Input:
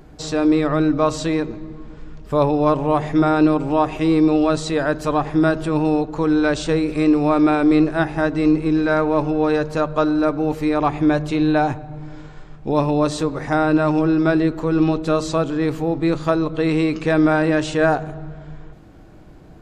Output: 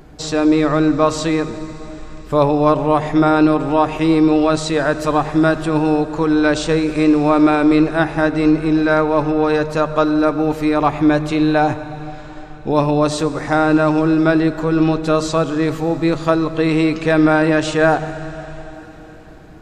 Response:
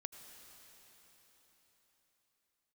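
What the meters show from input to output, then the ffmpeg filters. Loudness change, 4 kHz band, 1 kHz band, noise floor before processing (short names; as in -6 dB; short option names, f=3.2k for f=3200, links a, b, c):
+3.0 dB, +4.5 dB, +3.5 dB, -42 dBFS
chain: -filter_complex "[0:a]asplit=2[a][b];[1:a]atrim=start_sample=2205,lowshelf=f=480:g=-6.5[c];[b][c]afir=irnorm=-1:irlink=0,volume=3dB[d];[a][d]amix=inputs=2:normalize=0,volume=-1dB"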